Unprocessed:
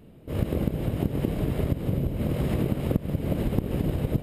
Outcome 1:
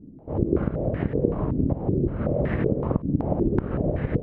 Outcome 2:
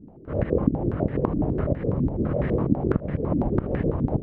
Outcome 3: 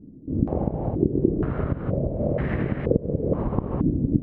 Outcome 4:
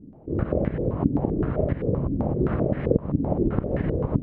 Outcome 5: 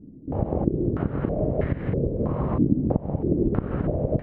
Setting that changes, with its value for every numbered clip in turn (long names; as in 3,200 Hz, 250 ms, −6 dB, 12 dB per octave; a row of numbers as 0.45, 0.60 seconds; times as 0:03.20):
low-pass on a step sequencer, speed: 5.3, 12, 2.1, 7.7, 3.1 Hertz